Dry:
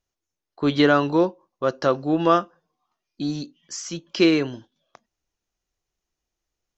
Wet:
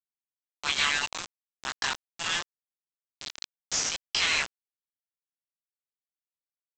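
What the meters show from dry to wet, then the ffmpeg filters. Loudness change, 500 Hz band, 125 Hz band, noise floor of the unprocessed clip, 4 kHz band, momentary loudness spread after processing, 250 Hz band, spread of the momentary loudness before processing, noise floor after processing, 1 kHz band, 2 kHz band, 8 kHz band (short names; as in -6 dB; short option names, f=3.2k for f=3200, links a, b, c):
-6.5 dB, -25.0 dB, -21.0 dB, -85 dBFS, +3.0 dB, 17 LU, -29.0 dB, 14 LU, under -85 dBFS, -11.0 dB, +0.5 dB, n/a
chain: -af "afftfilt=real='re*lt(hypot(re,im),0.141)':imag='im*lt(hypot(re,im),0.141)':win_size=1024:overlap=0.75,highpass=f=890:w=0.5412,highpass=f=890:w=1.3066,afftfilt=real='re*gte(hypot(re,im),0.00447)':imag='im*gte(hypot(re,im),0.00447)':win_size=1024:overlap=0.75,adynamicequalizer=threshold=0.00398:dfrequency=2200:dqfactor=2.4:tfrequency=2200:tqfactor=2.4:attack=5:release=100:ratio=0.375:range=2.5:mode=boostabove:tftype=bell,acontrast=71,flanger=delay=18.5:depth=2.5:speed=0.31,aresample=16000,acrusher=bits=4:mix=0:aa=0.000001,aresample=44100,volume=1dB"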